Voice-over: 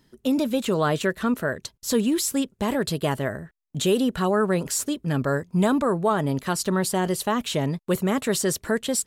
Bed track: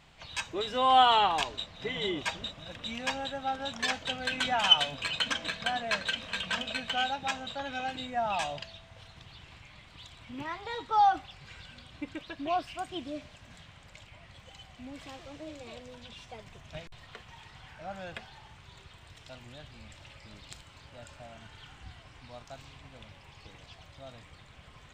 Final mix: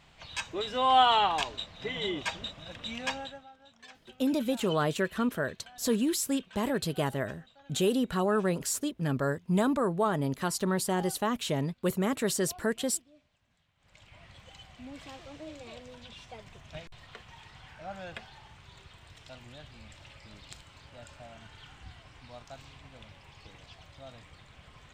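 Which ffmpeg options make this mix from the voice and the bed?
-filter_complex "[0:a]adelay=3950,volume=-5.5dB[a];[1:a]volume=20.5dB,afade=t=out:st=3.08:d=0.4:silence=0.0891251,afade=t=in:st=13.77:d=0.44:silence=0.0891251[b];[a][b]amix=inputs=2:normalize=0"

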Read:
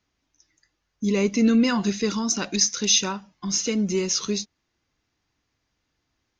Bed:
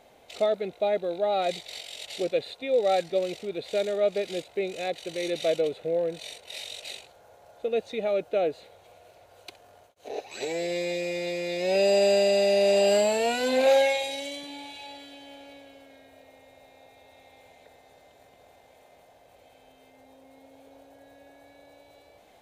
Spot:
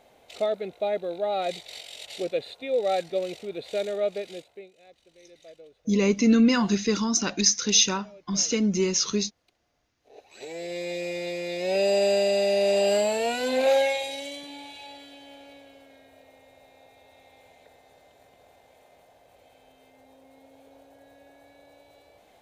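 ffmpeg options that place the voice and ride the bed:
-filter_complex "[0:a]adelay=4850,volume=0dB[a];[1:a]volume=21dB,afade=t=out:st=3.99:d=0.72:silence=0.0794328,afade=t=in:st=10.04:d=1.01:silence=0.0749894[b];[a][b]amix=inputs=2:normalize=0"

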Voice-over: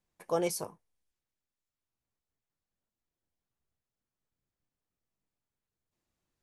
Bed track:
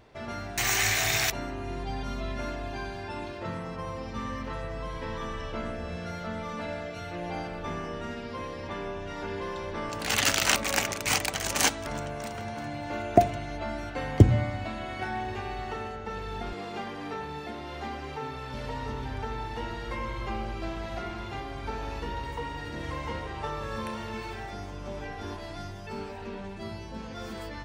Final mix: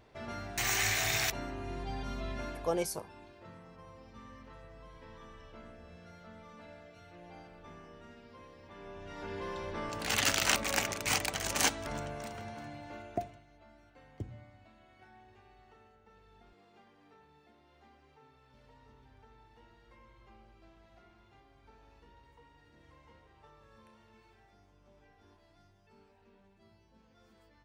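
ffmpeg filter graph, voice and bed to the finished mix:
-filter_complex "[0:a]adelay=2350,volume=-2dB[a];[1:a]volume=7.5dB,afade=t=out:st=2.36:d=0.54:silence=0.251189,afade=t=in:st=8.71:d=0.81:silence=0.237137,afade=t=out:st=11.97:d=1.47:silence=0.0891251[b];[a][b]amix=inputs=2:normalize=0"

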